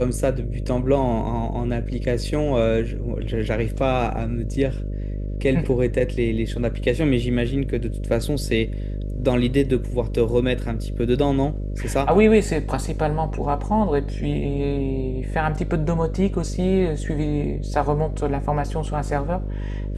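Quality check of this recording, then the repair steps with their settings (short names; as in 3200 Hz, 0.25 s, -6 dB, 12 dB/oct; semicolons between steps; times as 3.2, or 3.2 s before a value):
buzz 50 Hz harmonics 12 -27 dBFS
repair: de-hum 50 Hz, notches 12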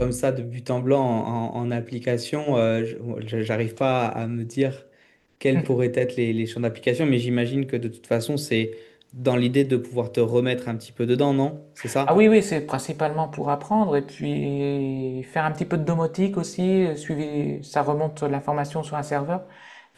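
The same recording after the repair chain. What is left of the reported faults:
none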